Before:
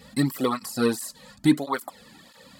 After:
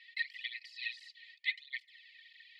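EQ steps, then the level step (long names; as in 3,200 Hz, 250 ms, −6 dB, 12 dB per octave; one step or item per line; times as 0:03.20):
linear-phase brick-wall high-pass 1,800 Hz
flat-topped band-pass 2,600 Hz, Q 0.71
high-frequency loss of the air 380 metres
+5.5 dB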